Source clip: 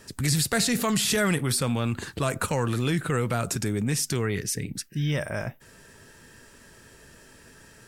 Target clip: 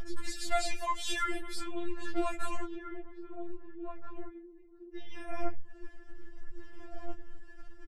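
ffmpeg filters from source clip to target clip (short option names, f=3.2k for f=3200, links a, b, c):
-filter_complex "[0:a]aphaser=in_gain=1:out_gain=1:delay=4.7:decay=0.48:speed=0.6:type=sinusoidal,aeval=exprs='val(0)+0.00282*(sin(2*PI*60*n/s)+sin(2*PI*2*60*n/s)/2+sin(2*PI*3*60*n/s)/3+sin(2*PI*4*60*n/s)/4+sin(2*PI*5*60*n/s)/5)':c=same,flanger=delay=19.5:depth=7.8:speed=2.6,asplit=3[a][b][c];[a]afade=t=out:st=2.64:d=0.02[d];[b]bandpass=f=110:t=q:w=1.3:csg=0,afade=t=in:st=2.64:d=0.02,afade=t=out:st=4.93:d=0.02[e];[c]afade=t=in:st=4.93:d=0.02[f];[d][e][f]amix=inputs=3:normalize=0,asplit=2[g][h];[h]adelay=1633,volume=-9dB,highshelf=f=4k:g=-36.7[i];[g][i]amix=inputs=2:normalize=0,acompressor=mode=upward:threshold=-45dB:ratio=2.5,anlmdn=0.00631,aemphasis=mode=reproduction:type=bsi,acompressor=threshold=-25dB:ratio=4,afftfilt=real='re*4*eq(mod(b,16),0)':imag='im*4*eq(mod(b,16),0)':win_size=2048:overlap=0.75,volume=2dB"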